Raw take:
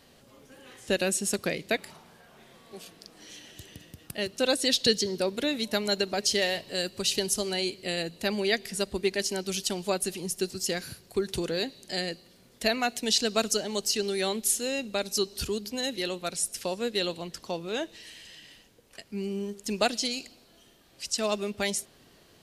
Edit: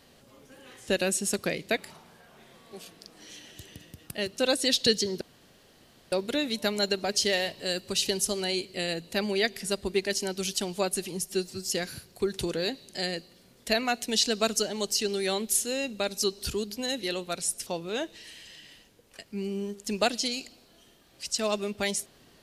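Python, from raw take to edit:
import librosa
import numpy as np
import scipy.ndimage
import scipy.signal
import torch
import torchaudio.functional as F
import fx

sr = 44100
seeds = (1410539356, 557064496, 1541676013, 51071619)

y = fx.edit(x, sr, fx.insert_room_tone(at_s=5.21, length_s=0.91),
    fx.stretch_span(start_s=10.35, length_s=0.29, factor=1.5),
    fx.cut(start_s=16.61, length_s=0.85), tone=tone)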